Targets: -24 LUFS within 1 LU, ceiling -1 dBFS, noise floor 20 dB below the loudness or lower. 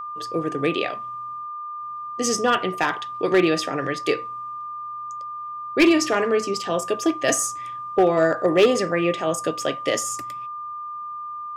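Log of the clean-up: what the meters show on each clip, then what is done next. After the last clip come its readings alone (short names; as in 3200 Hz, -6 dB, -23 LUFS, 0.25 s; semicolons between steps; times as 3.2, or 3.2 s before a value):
clipped 0.5%; flat tops at -10.0 dBFS; steady tone 1200 Hz; tone level -30 dBFS; loudness -23.5 LUFS; peak -10.0 dBFS; loudness target -24.0 LUFS
-> clip repair -10 dBFS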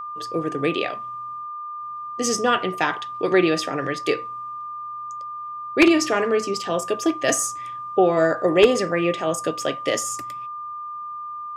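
clipped 0.0%; steady tone 1200 Hz; tone level -30 dBFS
-> notch 1200 Hz, Q 30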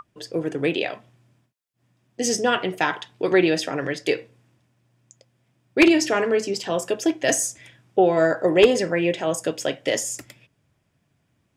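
steady tone none; loudness -22.0 LUFS; peak -1.0 dBFS; loudness target -24.0 LUFS
-> gain -2 dB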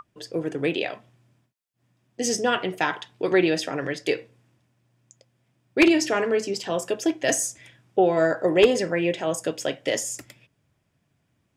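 loudness -24.0 LUFS; peak -3.0 dBFS; noise floor -72 dBFS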